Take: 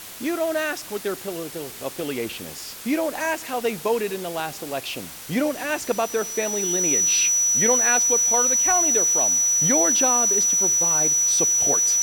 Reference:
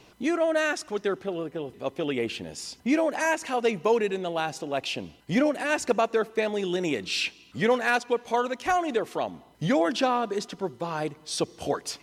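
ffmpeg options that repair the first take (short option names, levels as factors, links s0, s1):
-af "bandreject=f=5900:w=30,afwtdn=0.013"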